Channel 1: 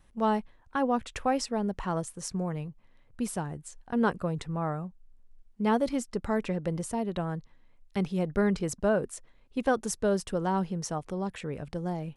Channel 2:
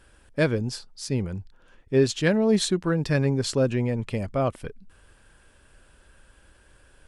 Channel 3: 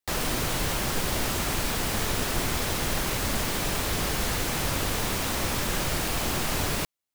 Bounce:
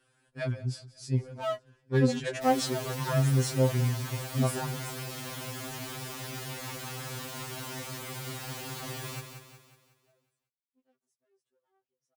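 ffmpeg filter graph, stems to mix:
-filter_complex "[0:a]volume=24.5dB,asoftclip=hard,volume=-24.5dB,adelay=1200,volume=2dB[a];[1:a]acontrast=86,volume=-15dB,asplit=3[b][c][d];[c]volume=-19dB[e];[2:a]adelay=2350,volume=-9.5dB,asplit=2[f][g];[g]volume=-7.5dB[h];[d]apad=whole_len=589178[i];[a][i]sidechaingate=range=-46dB:threshold=-54dB:ratio=16:detection=peak[j];[e][h]amix=inputs=2:normalize=0,aecho=0:1:183|366|549|732|915|1098|1281:1|0.47|0.221|0.104|0.0488|0.0229|0.0108[k];[j][b][f][k]amix=inputs=4:normalize=0,highpass=51,adynamicequalizer=threshold=0.00447:dfrequency=130:dqfactor=3.1:tfrequency=130:tqfactor=3.1:attack=5:release=100:ratio=0.375:range=3:mode=boostabove:tftype=bell,afftfilt=real='re*2.45*eq(mod(b,6),0)':imag='im*2.45*eq(mod(b,6),0)':win_size=2048:overlap=0.75"

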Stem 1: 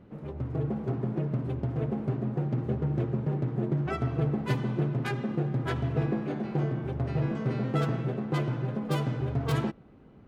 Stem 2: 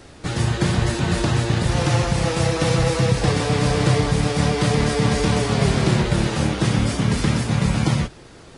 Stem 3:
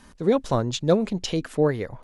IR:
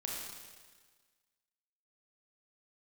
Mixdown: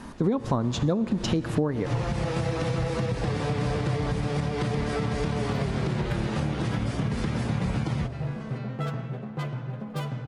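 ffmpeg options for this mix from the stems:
-filter_complex "[0:a]equalizer=f=340:t=o:w=0.64:g=-9.5,adelay=1050,volume=-2dB[a];[1:a]highshelf=f=4.3k:g=-11,volume=-4dB[b];[2:a]equalizer=f=125:t=o:w=1:g=7,equalizer=f=250:t=o:w=1:g=10,equalizer=f=1k:t=o:w=1:g=9,volume=1dB,asplit=3[c][d][e];[d]volume=-15dB[f];[e]apad=whole_len=378195[g];[b][g]sidechaincompress=threshold=-22dB:ratio=8:attack=7.5:release=110[h];[a][h]amix=inputs=2:normalize=0,alimiter=limit=-17dB:level=0:latency=1:release=146,volume=0dB[i];[3:a]atrim=start_sample=2205[j];[f][j]afir=irnorm=-1:irlink=0[k];[c][i][k]amix=inputs=3:normalize=0,acompressor=threshold=-21dB:ratio=12"

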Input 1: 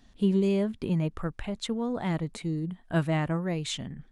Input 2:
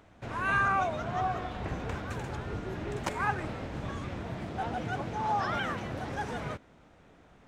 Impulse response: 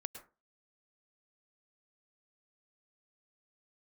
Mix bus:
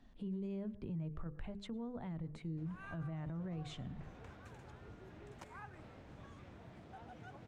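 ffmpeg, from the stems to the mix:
-filter_complex "[0:a]lowpass=f=1.5k:p=1,bandreject=f=50:t=h:w=6,bandreject=f=100:t=h:w=6,bandreject=f=150:t=h:w=6,bandreject=f=200:t=h:w=6,bandreject=f=250:t=h:w=6,bandreject=f=300:t=h:w=6,bandreject=f=350:t=h:w=6,bandreject=f=400:t=h:w=6,bandreject=f=450:t=h:w=6,bandreject=f=500:t=h:w=6,volume=-5dB,asplit=2[a][b];[b]volume=-11dB[c];[1:a]adelay=2350,volume=-17.5dB[d];[2:a]atrim=start_sample=2205[e];[c][e]afir=irnorm=-1:irlink=0[f];[a][d][f]amix=inputs=3:normalize=0,acrossover=split=150[g][h];[h]acompressor=threshold=-52dB:ratio=2[i];[g][i]amix=inputs=2:normalize=0,alimiter=level_in=11.5dB:limit=-24dB:level=0:latency=1:release=13,volume=-11.5dB"

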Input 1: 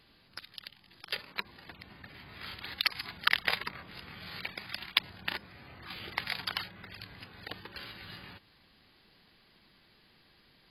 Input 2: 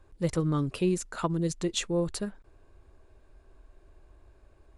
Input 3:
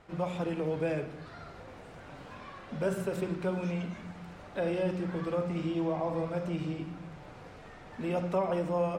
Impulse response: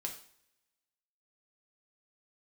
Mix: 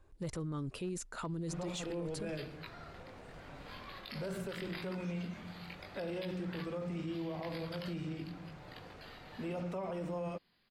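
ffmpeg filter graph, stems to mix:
-filter_complex "[0:a]flanger=delay=17.5:depth=5.1:speed=0.8,adelay=1250,volume=-11dB,asplit=2[a][b];[b]volume=-5.5dB[c];[1:a]asoftclip=type=hard:threshold=-18.5dB,volume=-5.5dB[d];[2:a]adynamicequalizer=threshold=0.00631:dfrequency=850:dqfactor=0.74:tfrequency=850:tqfactor=0.74:attack=5:release=100:ratio=0.375:range=2.5:mode=cutabove:tftype=bell,adelay=1400,volume=-4dB[e];[3:a]atrim=start_sample=2205[f];[c][f]afir=irnorm=-1:irlink=0[g];[a][d][e][g]amix=inputs=4:normalize=0,alimiter=level_in=8dB:limit=-24dB:level=0:latency=1:release=20,volume=-8dB"

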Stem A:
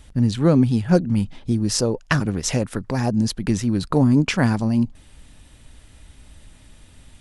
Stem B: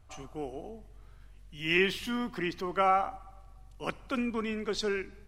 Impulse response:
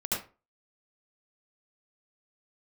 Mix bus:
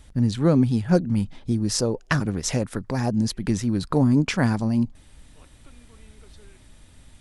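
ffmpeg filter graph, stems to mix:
-filter_complex "[0:a]equalizer=f=2.8k:t=o:w=0.31:g=-3,volume=-2.5dB,asplit=2[a][b];[1:a]acompressor=threshold=-35dB:ratio=6,adelay=1550,volume=-17dB[c];[b]apad=whole_len=300928[d];[c][d]sidechaincompress=threshold=-35dB:ratio=8:attack=16:release=268[e];[a][e]amix=inputs=2:normalize=0"

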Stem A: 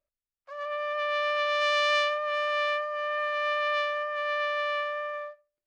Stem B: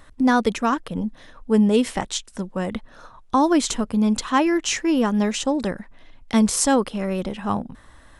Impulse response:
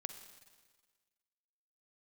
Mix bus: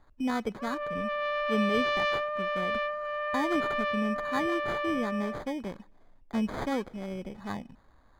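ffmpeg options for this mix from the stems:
-filter_complex "[0:a]adelay=100,volume=-1.5dB[a];[1:a]acrusher=samples=16:mix=1:aa=0.000001,volume=-12.5dB,asplit=2[b][c];[c]volume=-17dB[d];[2:a]atrim=start_sample=2205[e];[d][e]afir=irnorm=-1:irlink=0[f];[a][b][f]amix=inputs=3:normalize=0,aemphasis=mode=reproduction:type=75kf"

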